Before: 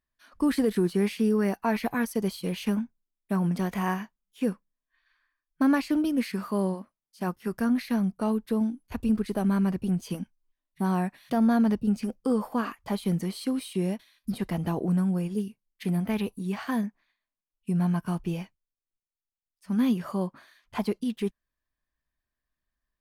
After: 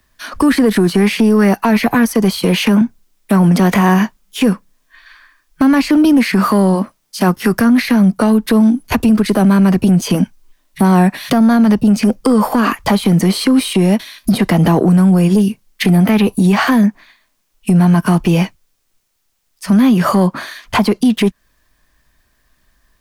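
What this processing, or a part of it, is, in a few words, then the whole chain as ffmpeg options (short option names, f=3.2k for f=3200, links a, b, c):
mastering chain: -filter_complex "[0:a]asettb=1/sr,asplit=3[a][b][c];[a]atrim=end=2.374[d];[b]atrim=start=2.37:end=2.81,asetpts=PTS-STARTPTS,afade=t=in:d=0.004:c=qsin,afade=t=out:st=0.436:d=0.004:c=qsin,highpass=170[e];[c]atrim=start=2.806[f];[d][e]acrossfade=d=0.004:c1=hsin:c2=qsin[g];[g][f]acrossfade=d=0.004:c1=qsin:c2=hsin,equalizer=f=5.8k:t=o:w=0.77:g=2,acrossover=split=130|280|600|2400[h][i][j][k][l];[h]acompressor=threshold=-53dB:ratio=4[m];[i]acompressor=threshold=-27dB:ratio=4[n];[j]acompressor=threshold=-37dB:ratio=4[o];[k]acompressor=threshold=-34dB:ratio=4[p];[l]acompressor=threshold=-48dB:ratio=4[q];[m][n][o][p][q]amix=inputs=5:normalize=0,acompressor=threshold=-34dB:ratio=2.5,asoftclip=type=tanh:threshold=-27.5dB,alimiter=level_in=31.5dB:limit=-1dB:release=50:level=0:latency=1,volume=-4dB"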